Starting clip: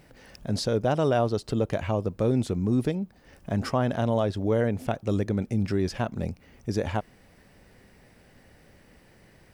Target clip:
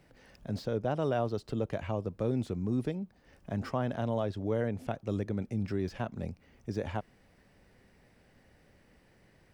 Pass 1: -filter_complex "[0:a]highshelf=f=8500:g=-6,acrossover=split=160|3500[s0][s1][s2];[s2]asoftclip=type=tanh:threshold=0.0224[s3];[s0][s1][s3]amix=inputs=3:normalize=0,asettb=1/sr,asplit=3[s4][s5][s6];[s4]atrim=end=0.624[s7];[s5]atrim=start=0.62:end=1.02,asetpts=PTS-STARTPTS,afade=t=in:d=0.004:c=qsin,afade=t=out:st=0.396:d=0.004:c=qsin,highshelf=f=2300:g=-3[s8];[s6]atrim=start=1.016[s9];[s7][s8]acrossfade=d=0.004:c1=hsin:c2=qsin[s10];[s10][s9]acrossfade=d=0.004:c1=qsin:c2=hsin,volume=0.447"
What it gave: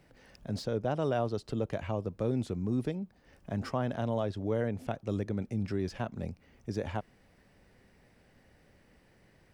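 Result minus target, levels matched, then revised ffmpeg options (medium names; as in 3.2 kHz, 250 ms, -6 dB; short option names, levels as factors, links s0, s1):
saturation: distortion -9 dB
-filter_complex "[0:a]highshelf=f=8500:g=-6,acrossover=split=160|3500[s0][s1][s2];[s2]asoftclip=type=tanh:threshold=0.00631[s3];[s0][s1][s3]amix=inputs=3:normalize=0,asettb=1/sr,asplit=3[s4][s5][s6];[s4]atrim=end=0.624[s7];[s5]atrim=start=0.62:end=1.02,asetpts=PTS-STARTPTS,afade=t=in:d=0.004:c=qsin,afade=t=out:st=0.396:d=0.004:c=qsin,highshelf=f=2300:g=-3[s8];[s6]atrim=start=1.016[s9];[s7][s8]acrossfade=d=0.004:c1=hsin:c2=qsin[s10];[s10][s9]acrossfade=d=0.004:c1=qsin:c2=hsin,volume=0.447"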